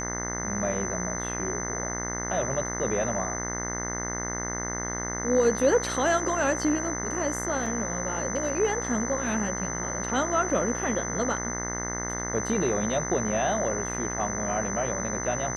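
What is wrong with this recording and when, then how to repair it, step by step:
buzz 60 Hz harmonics 35 -34 dBFS
tone 6100 Hz -33 dBFS
7.66 gap 3.5 ms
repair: de-hum 60 Hz, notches 35; notch 6100 Hz, Q 30; interpolate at 7.66, 3.5 ms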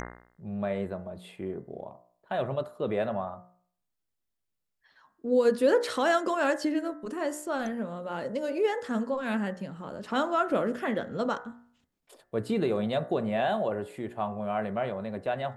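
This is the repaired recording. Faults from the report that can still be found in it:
none

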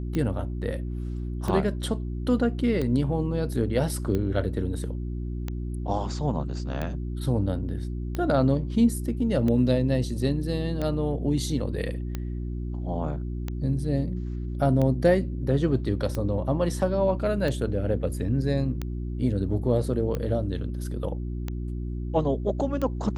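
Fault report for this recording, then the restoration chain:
hum 60 Hz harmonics 6 -31 dBFS
tick 45 rpm -17 dBFS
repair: de-click; de-hum 60 Hz, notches 6

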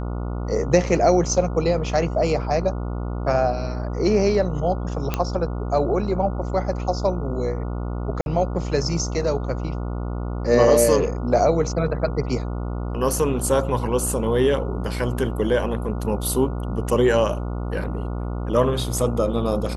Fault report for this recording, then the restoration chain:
buzz 60 Hz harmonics 24 -27 dBFS
5.14 pop -8 dBFS
8.21–8.26 gap 51 ms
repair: de-click; de-hum 60 Hz, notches 24; interpolate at 8.21, 51 ms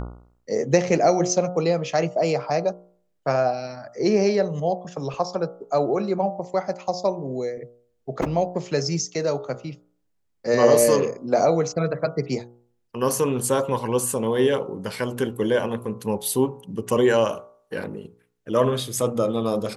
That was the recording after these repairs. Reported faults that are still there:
none

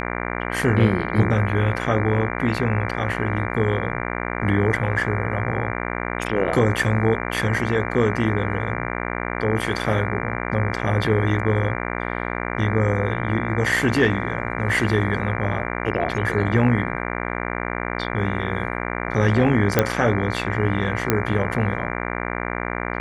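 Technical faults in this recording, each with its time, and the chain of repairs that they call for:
buzz 60 Hz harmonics 39 -27 dBFS
19.79 pop -2 dBFS
21.1 pop -3 dBFS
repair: de-click; de-hum 60 Hz, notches 39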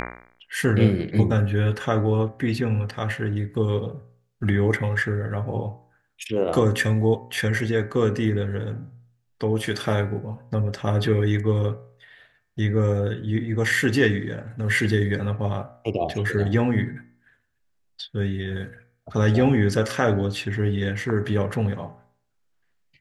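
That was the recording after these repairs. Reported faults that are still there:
none

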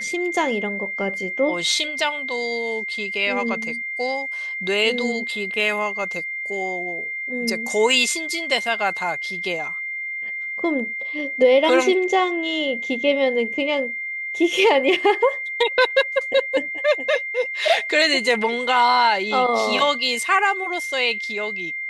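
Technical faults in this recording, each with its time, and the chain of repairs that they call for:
tone 2100 Hz -26 dBFS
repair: notch 2100 Hz, Q 30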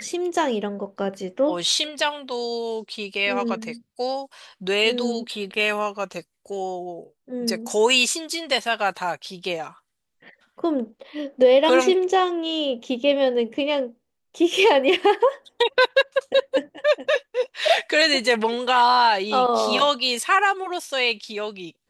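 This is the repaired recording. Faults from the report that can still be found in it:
none

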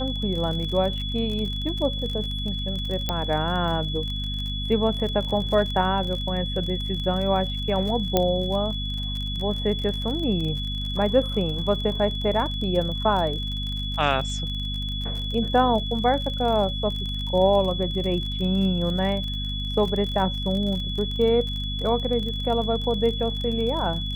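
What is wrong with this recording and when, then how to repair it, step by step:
crackle 39/s -30 dBFS
hum 50 Hz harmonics 5 -30 dBFS
tone 3400 Hz -31 dBFS
3.09 pop -10 dBFS
8.17 pop -6 dBFS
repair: de-click; notch 3400 Hz, Q 30; de-hum 50 Hz, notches 5

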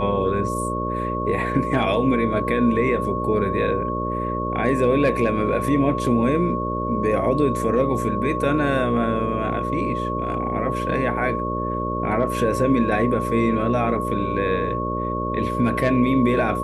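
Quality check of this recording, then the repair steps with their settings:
buzz 60 Hz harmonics 10 -27 dBFS
tone 1100 Hz -26 dBFS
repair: de-hum 60 Hz, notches 10; notch 1100 Hz, Q 30

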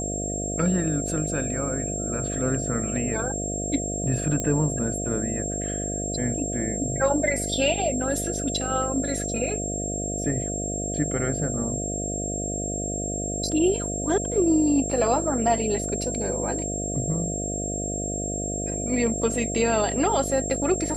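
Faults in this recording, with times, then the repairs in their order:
buzz 50 Hz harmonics 14 -31 dBFS
tone 7500 Hz -30 dBFS
4.4 pop -14 dBFS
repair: de-click; de-hum 50 Hz, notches 14; notch 7500 Hz, Q 30

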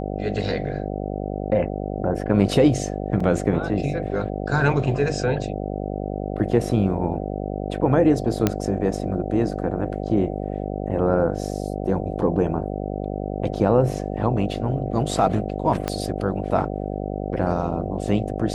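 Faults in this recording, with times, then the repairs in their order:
buzz 50 Hz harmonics 15 -28 dBFS
3.2 gap 4.3 ms
8.47 pop -5 dBFS
15.88 pop -10 dBFS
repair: de-click; de-hum 50 Hz, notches 15; interpolate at 3.2, 4.3 ms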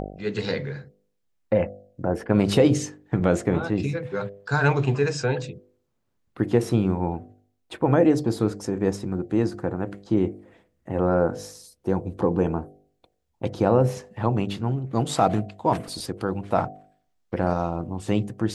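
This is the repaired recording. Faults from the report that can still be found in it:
15.88 pop

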